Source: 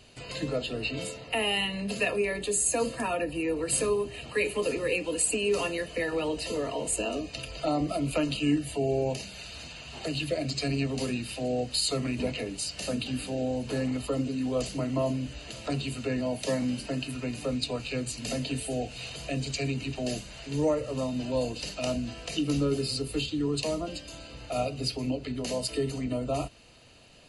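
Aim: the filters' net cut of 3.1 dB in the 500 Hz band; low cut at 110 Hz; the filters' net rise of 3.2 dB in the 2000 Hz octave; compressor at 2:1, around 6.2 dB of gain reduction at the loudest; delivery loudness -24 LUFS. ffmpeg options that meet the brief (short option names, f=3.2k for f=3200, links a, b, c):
-af "highpass=110,equalizer=f=500:t=o:g=-4,equalizer=f=2k:t=o:g=4.5,acompressor=threshold=-33dB:ratio=2,volume=10.5dB"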